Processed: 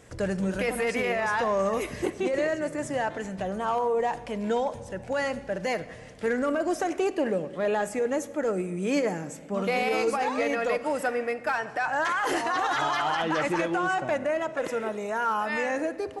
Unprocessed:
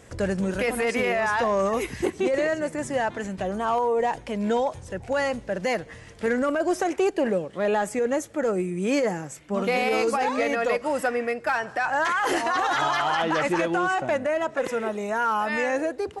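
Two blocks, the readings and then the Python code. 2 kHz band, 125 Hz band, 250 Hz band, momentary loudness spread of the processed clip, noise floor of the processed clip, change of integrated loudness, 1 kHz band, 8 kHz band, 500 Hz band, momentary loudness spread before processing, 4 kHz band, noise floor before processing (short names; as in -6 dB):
-2.5 dB, -2.5 dB, -2.5 dB, 5 LU, -43 dBFS, -2.5 dB, -2.5 dB, -3.0 dB, -2.5 dB, 5 LU, -3.0 dB, -45 dBFS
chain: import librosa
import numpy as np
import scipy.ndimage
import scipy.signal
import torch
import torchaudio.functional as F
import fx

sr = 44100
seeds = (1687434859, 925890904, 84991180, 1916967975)

y = fx.room_shoebox(x, sr, seeds[0], volume_m3=2200.0, walls='mixed', distance_m=0.44)
y = y * librosa.db_to_amplitude(-3.0)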